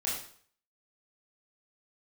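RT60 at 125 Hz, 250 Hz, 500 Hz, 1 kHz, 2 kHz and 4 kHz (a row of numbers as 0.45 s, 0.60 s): 0.55 s, 0.50 s, 0.55 s, 0.55 s, 0.50 s, 0.50 s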